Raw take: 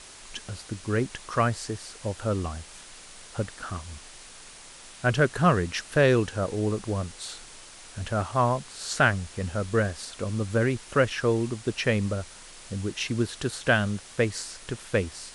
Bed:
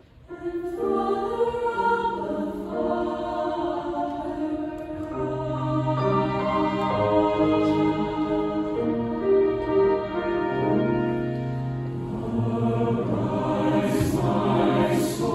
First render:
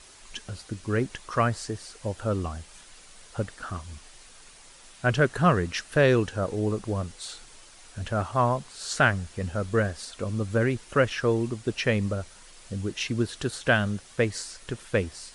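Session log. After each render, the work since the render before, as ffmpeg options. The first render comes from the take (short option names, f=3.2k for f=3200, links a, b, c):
-af "afftdn=nr=6:nf=-47"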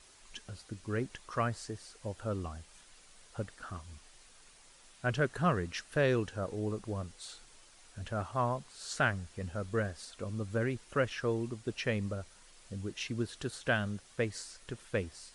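-af "volume=-8.5dB"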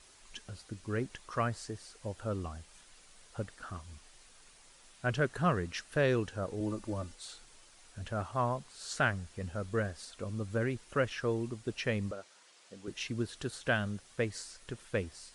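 -filter_complex "[0:a]asettb=1/sr,asplit=3[a][b][c];[a]atrim=end=6.604[d];[b]atrim=start=6.6:end=7.15,asetpts=PTS-STARTPTS,afade=t=in:d=0.004:c=qsin,afade=t=out:st=0.546:d=0.004:c=qsin,aecho=1:1:3.4:0.69,atrim=end_sample=24255[e];[c]atrim=start=7.146[f];[d][e]acrossfade=d=0.004:c1=hsin:c2=qsin[g];[g][f]acrossfade=d=0.004:c1=qsin:c2=hsin,asettb=1/sr,asplit=3[h][i][j];[h]atrim=end=12.114[k];[i]atrim=start=12.11:end=12.88,asetpts=PTS-STARTPTS,afade=t=in:d=0.004:c=qsin,afade=t=out:st=0.766:d=0.004:c=qsin,highpass=340,lowpass=7.7k[l];[j]atrim=start=12.876[m];[k][l]acrossfade=d=0.004:c1=hsin:c2=qsin[n];[n][m]acrossfade=d=0.004:c1=qsin:c2=hsin"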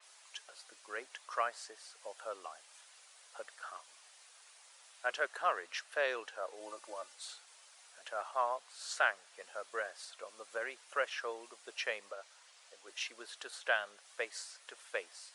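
-af "highpass=f=590:w=0.5412,highpass=f=590:w=1.3066,adynamicequalizer=threshold=0.002:dfrequency=4800:dqfactor=0.7:tfrequency=4800:tqfactor=0.7:attack=5:release=100:ratio=0.375:range=2.5:mode=cutabove:tftype=highshelf"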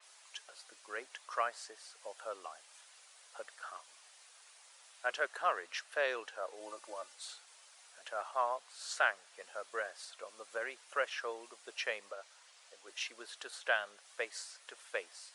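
-af anull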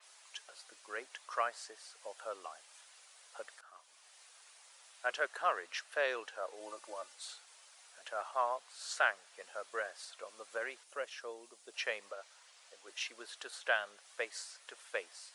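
-filter_complex "[0:a]asettb=1/sr,asplit=3[a][b][c];[a]atrim=end=10.834[d];[b]atrim=start=10.83:end=11.74,asetpts=PTS-STARTPTS,afade=t=in:d=0.004:c=qsin,afade=t=out:st=0.906:d=0.004:c=qsin,equalizer=f=1.5k:w=0.44:g=-9[e];[c]atrim=start=11.736[f];[d][e]acrossfade=d=0.004:c1=hsin:c2=qsin[g];[g][f]acrossfade=d=0.004:c1=qsin:c2=hsin,asplit=2[h][i];[h]atrim=end=3.61,asetpts=PTS-STARTPTS,afade=t=out:st=3.606:d=0.004:c=hsin:silence=0.141254[j];[i]atrim=start=3.61,asetpts=PTS-STARTPTS,afade=t=in:d=0.58:silence=0.141254[k];[j][k]concat=n=2:v=0:a=1"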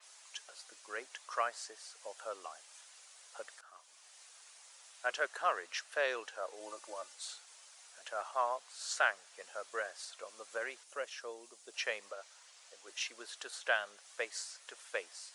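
-af "equalizer=f=6.6k:w=1.4:g=4.5"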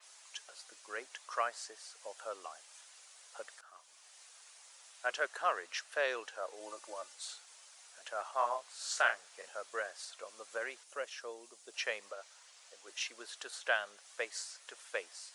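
-filter_complex "[0:a]asettb=1/sr,asplit=3[a][b][c];[a]atrim=end=8.354[d];[b]atrim=start=8.35:end=9.49,asetpts=PTS-STARTPTS,afade=t=in:d=0.004:c=qsin,afade=t=out:st=1.136:d=0.004:c=qsin,asplit=2[e][f];[f]adelay=34,volume=-6dB[g];[e][g]amix=inputs=2:normalize=0,atrim=end_sample=50274[h];[c]atrim=start=9.486[i];[d][h]acrossfade=d=0.004:c1=hsin:c2=qsin[j];[j][i]acrossfade=d=0.004:c1=qsin:c2=hsin"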